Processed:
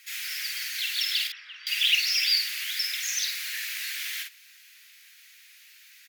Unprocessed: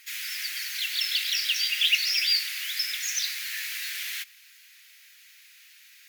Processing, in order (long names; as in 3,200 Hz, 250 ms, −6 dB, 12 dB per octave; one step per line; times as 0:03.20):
0:01.27–0:01.67: low-pass filter 1,100 Hz 12 dB per octave
double-tracking delay 48 ms −4.5 dB
pitch vibrato 14 Hz 34 cents
level −1 dB